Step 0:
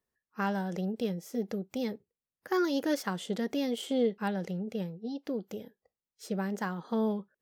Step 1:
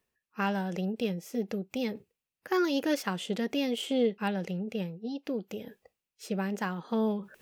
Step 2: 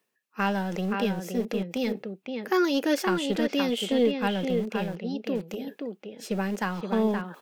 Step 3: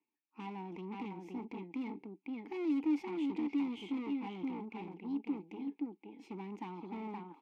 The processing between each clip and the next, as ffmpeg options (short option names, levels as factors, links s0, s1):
-af "equalizer=f=2600:w=3.3:g=9,areverse,acompressor=mode=upward:threshold=0.01:ratio=2.5,areverse,volume=1.12"
-filter_complex "[0:a]acrossover=split=150|4500[s0][s1][s2];[s0]acrusher=bits=5:dc=4:mix=0:aa=0.000001[s3];[s1]aecho=1:1:522:0.562[s4];[s3][s4][s2]amix=inputs=3:normalize=0,volume=1.58"
-filter_complex "[0:a]aeval=exprs='(tanh(35.5*val(0)+0.65)-tanh(0.65))/35.5':c=same,asplit=3[s0][s1][s2];[s0]bandpass=f=300:t=q:w=8,volume=1[s3];[s1]bandpass=f=870:t=q:w=8,volume=0.501[s4];[s2]bandpass=f=2240:t=q:w=8,volume=0.355[s5];[s3][s4][s5]amix=inputs=3:normalize=0,volume=2"